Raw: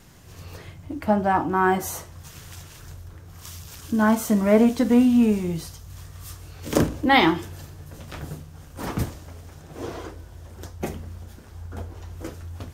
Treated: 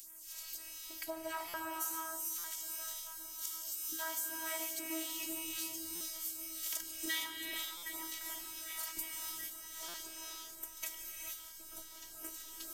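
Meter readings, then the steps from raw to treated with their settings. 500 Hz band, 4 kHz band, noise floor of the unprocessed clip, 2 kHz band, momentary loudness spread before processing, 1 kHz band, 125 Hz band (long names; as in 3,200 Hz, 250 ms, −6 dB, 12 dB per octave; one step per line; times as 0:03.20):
−24.0 dB, −8.0 dB, −45 dBFS, −15.0 dB, 22 LU, −21.0 dB, below −40 dB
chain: phases set to zero 321 Hz
first-order pre-emphasis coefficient 0.97
on a send: echo with a time of its own for lows and highs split 2,900 Hz, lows 765 ms, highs 138 ms, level −15.5 dB
on the sum: all-pass phaser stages 2, 1.9 Hz, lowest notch 160–4,400 Hz
downward compressor 6 to 1, threshold −44 dBFS, peak gain reduction 17.5 dB
high-shelf EQ 12,000 Hz +3 dB
reverb whose tail is shaped and stops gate 490 ms rising, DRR 1 dB
buffer that repeats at 0:01.48/0:02.38/0:05.95/0:07.77/0:09.88, samples 256, times 9
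level +7 dB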